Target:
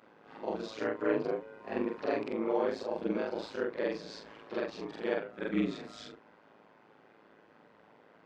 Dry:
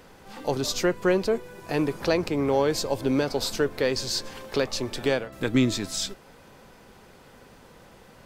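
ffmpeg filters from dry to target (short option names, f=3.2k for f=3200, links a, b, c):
-af "afftfilt=real='re':imag='-im':win_size=4096:overlap=0.75,aeval=exprs='val(0)*sin(2*PI*54*n/s)':c=same,highpass=230,lowpass=2.3k"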